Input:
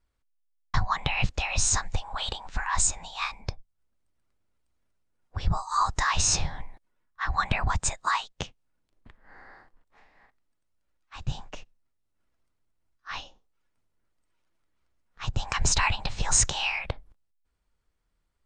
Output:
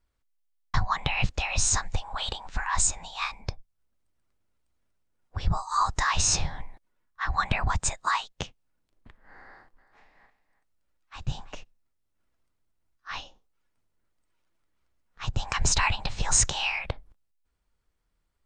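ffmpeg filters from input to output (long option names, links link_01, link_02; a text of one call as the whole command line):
ffmpeg -i in.wav -filter_complex "[0:a]asettb=1/sr,asplit=3[link_01][link_02][link_03];[link_01]atrim=end=9.454[link_04];[link_02]atrim=start=9.45:end=11.55,asetpts=PTS-STARTPTS,afade=type=in:duration=0.004:curve=qsin,afade=type=out:start_time=2.096:duration=0.004:curve=qsin,aecho=1:1:332:0.178,atrim=end_sample=92610[link_05];[link_03]atrim=start=11.546[link_06];[link_04][link_05]acrossfade=duration=0.004:curve1=hsin:curve2=qsin[link_07];[link_07][link_06]acrossfade=duration=0.004:curve1=qsin:curve2=hsin" out.wav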